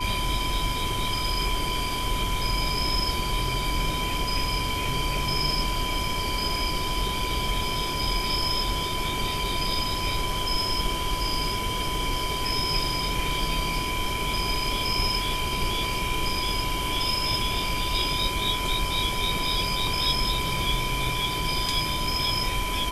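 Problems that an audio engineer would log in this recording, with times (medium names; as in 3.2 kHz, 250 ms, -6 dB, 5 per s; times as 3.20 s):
whine 1 kHz -31 dBFS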